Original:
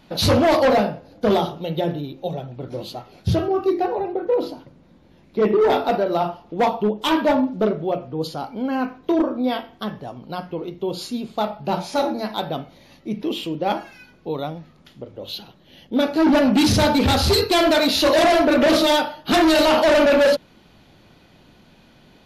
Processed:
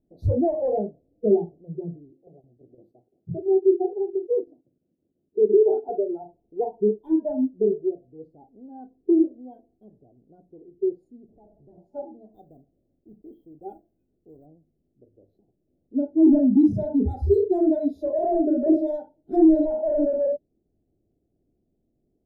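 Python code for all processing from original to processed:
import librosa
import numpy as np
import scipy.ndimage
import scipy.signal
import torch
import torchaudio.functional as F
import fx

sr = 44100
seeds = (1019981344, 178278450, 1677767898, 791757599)

y = fx.chain(x, sr, fx.highpass(hz=130.0, slope=12),
    fx.high_shelf(hz=5300.0, db=6.0),
    fx.chopper(hz=5.9, depth_pct=65, duty_pct=80), at=(2.1, 5.89))
y = fx.chain(y, sr, fx.zero_step(step_db=-28.5),
    fx.lowpass(hz=1900.0, slope=12),
    fx.tube_stage(drive_db=28.0, bias=0.7), at=(11.28, 11.78))
y = fx.chain(y, sr, fx.block_float(bits=3),
    fx.notch(hz=870.0, q=9.2),
    fx.dynamic_eq(hz=420.0, q=0.8, threshold_db=-37.0, ratio=4.0, max_db=-4), at=(12.32, 14.46))
y = scipy.signal.sosfilt(scipy.signal.cheby2(4, 40, 1100.0, 'lowpass', fs=sr, output='sos'), y)
y = fx.noise_reduce_blind(y, sr, reduce_db=19)
y = y + 0.41 * np.pad(y, (int(2.8 * sr / 1000.0), 0))[:len(y)]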